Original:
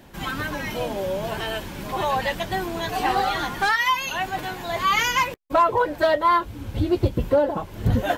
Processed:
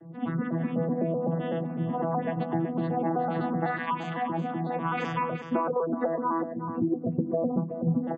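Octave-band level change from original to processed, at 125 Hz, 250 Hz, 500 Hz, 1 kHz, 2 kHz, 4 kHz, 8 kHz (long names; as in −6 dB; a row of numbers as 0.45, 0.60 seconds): −2.0 dB, +2.0 dB, −5.5 dB, −8.5 dB, −13.5 dB, −21.0 dB, below −25 dB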